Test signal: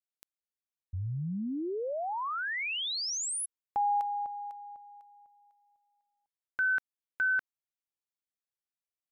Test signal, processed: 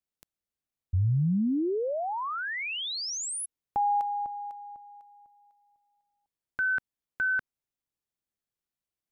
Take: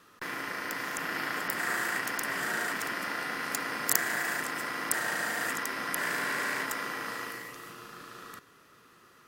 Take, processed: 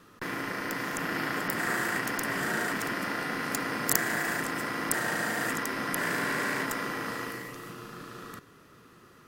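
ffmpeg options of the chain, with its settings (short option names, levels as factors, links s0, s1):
-af "lowshelf=f=430:g=10.5"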